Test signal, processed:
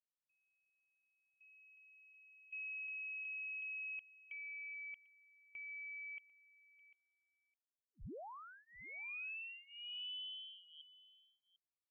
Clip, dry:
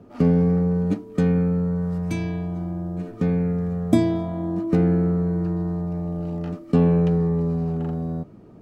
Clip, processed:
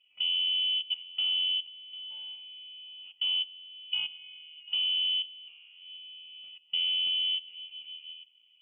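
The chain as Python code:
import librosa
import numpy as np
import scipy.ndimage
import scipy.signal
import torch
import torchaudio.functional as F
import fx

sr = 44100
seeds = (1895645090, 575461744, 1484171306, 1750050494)

p1 = fx.dynamic_eq(x, sr, hz=160.0, q=0.88, threshold_db=-32.0, ratio=4.0, max_db=3)
p2 = fx.level_steps(p1, sr, step_db=19)
p3 = fx.fixed_phaser(p2, sr, hz=380.0, stages=6)
p4 = p3 + fx.echo_single(p3, sr, ms=746, db=-18.0, dry=0)
p5 = fx.freq_invert(p4, sr, carrier_hz=3200)
y = p5 * 10.0 ** (-7.5 / 20.0)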